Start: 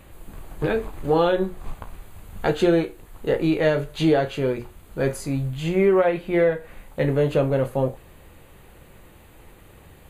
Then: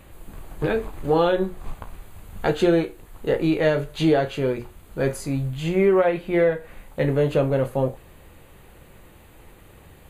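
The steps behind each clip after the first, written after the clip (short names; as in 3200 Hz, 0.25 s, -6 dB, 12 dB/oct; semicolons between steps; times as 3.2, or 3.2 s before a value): nothing audible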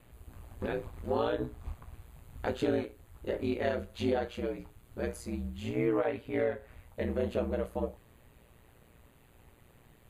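ring modulator 59 Hz; gain -8.5 dB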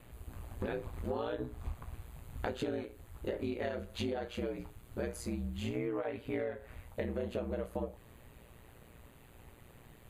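compressor 6:1, threshold -36 dBFS, peak gain reduction 11.5 dB; gain +3 dB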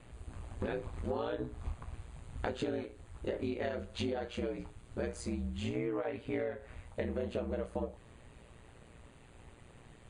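gain +1 dB; MP3 56 kbps 22050 Hz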